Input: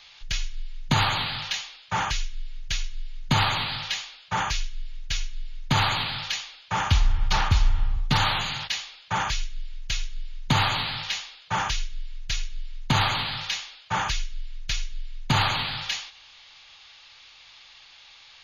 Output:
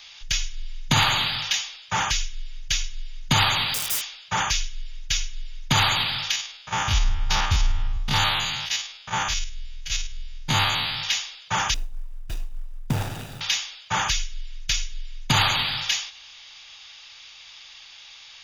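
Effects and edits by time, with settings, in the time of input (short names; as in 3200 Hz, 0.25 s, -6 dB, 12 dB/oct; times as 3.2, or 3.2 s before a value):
0.57–1.3 flutter echo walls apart 9.4 m, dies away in 0.31 s
3.74–4.19 wrapped overs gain 27.5 dB
6.31–11.02 stepped spectrum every 50 ms
11.74–13.41 median filter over 41 samples
whole clip: high shelf 3000 Hz +10.5 dB; notch 4200 Hz, Q 9.7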